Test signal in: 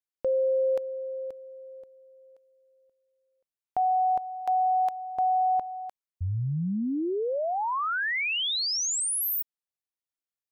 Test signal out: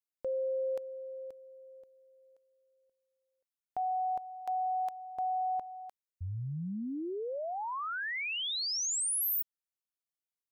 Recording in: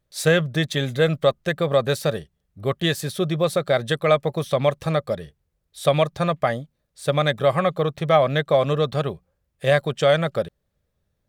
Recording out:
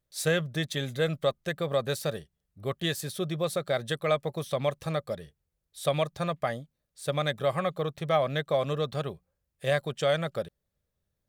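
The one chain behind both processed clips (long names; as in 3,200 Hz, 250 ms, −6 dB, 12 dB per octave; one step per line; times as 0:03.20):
high-shelf EQ 5,100 Hz +6 dB
level −8.5 dB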